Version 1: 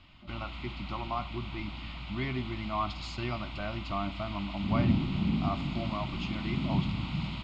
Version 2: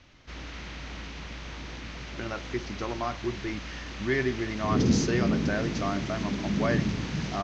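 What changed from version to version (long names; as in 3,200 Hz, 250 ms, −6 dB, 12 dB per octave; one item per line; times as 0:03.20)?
speech: entry +1.90 s
master: remove phaser with its sweep stopped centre 1,700 Hz, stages 6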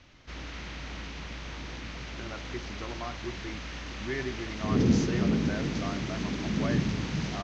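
speech −7.0 dB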